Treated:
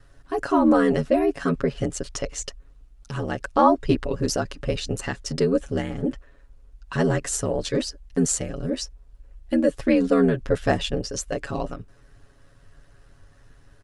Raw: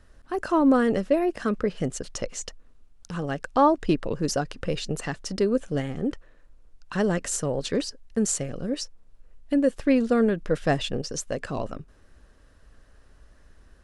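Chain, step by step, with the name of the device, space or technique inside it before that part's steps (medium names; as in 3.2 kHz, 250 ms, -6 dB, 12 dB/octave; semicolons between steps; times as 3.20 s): ring-modulated robot voice (ring modulator 41 Hz; comb 7.2 ms, depth 80%); trim +3 dB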